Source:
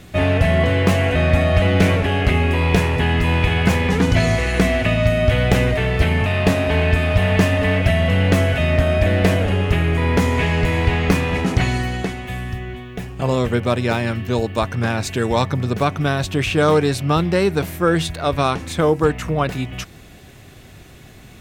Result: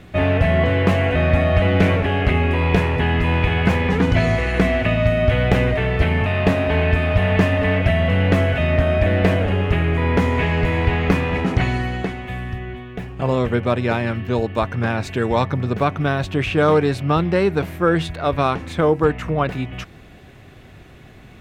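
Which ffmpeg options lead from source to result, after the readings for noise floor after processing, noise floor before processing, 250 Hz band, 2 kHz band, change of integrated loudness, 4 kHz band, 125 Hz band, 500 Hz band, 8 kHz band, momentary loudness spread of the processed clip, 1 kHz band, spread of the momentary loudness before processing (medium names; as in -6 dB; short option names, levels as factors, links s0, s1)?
-43 dBFS, -42 dBFS, -0.5 dB, -1.0 dB, -0.5 dB, -4.0 dB, -1.0 dB, 0.0 dB, under -10 dB, 6 LU, 0.0 dB, 6 LU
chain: -af "bass=f=250:g=-1,treble=f=4000:g=-12"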